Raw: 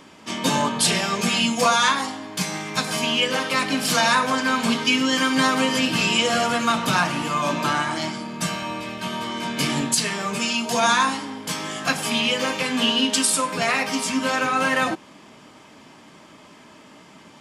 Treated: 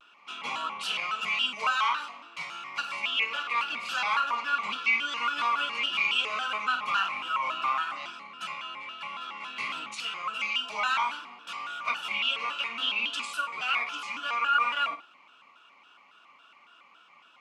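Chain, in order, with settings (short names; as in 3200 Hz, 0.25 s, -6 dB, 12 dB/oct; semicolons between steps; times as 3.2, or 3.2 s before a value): double band-pass 1800 Hz, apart 0.95 oct; flutter echo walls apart 8.9 m, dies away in 0.28 s; shaped vibrato square 3.6 Hz, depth 160 cents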